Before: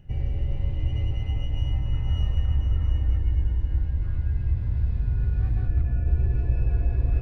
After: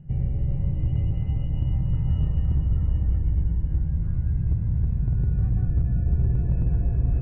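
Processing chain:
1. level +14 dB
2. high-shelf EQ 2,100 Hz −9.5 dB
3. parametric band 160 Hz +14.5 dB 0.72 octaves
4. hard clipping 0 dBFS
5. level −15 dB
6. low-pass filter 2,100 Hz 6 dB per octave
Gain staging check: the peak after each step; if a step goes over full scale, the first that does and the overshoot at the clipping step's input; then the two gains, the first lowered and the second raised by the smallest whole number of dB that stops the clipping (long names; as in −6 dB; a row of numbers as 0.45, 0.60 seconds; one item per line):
+4.0, +3.5, +5.5, 0.0, −15.0, −15.0 dBFS
step 1, 5.5 dB
step 1 +8 dB, step 5 −9 dB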